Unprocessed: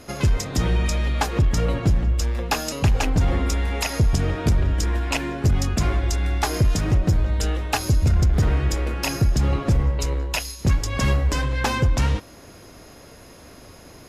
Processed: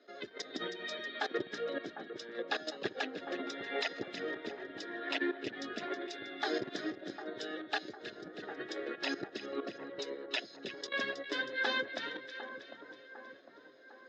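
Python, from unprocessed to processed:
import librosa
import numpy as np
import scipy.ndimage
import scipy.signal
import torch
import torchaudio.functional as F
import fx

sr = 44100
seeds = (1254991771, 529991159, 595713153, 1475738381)

y = fx.bin_expand(x, sr, power=1.5)
y = fx.level_steps(y, sr, step_db=16)
y = fx.cabinet(y, sr, low_hz=290.0, low_slope=24, high_hz=4300.0, hz=(400.0, 990.0, 1700.0, 2500.0, 3700.0), db=(4, -9, 9, -6, 9))
y = fx.echo_split(y, sr, split_hz=1600.0, low_ms=753, high_ms=319, feedback_pct=52, wet_db=-10)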